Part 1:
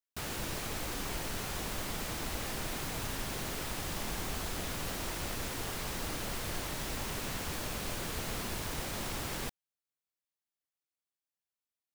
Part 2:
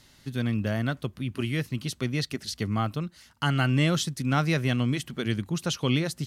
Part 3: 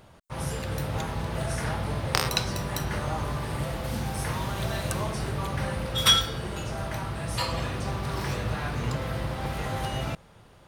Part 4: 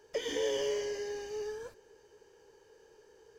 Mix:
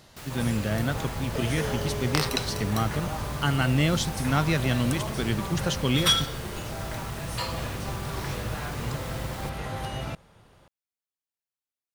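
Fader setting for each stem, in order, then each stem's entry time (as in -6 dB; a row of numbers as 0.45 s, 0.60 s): -3.5 dB, 0.0 dB, -2.5 dB, -2.5 dB; 0.00 s, 0.00 s, 0.00 s, 1.20 s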